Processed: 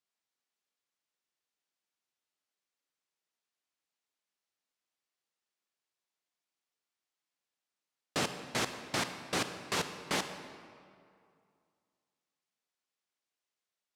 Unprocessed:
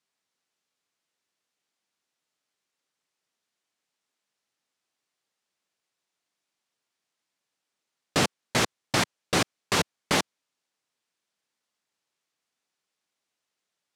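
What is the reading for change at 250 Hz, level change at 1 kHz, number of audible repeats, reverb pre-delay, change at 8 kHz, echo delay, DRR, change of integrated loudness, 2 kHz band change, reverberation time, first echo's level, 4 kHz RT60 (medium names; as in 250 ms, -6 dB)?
-9.0 dB, -8.0 dB, no echo, 29 ms, -8.0 dB, no echo, 8.0 dB, -8.5 dB, -8.0 dB, 2.4 s, no echo, 1.5 s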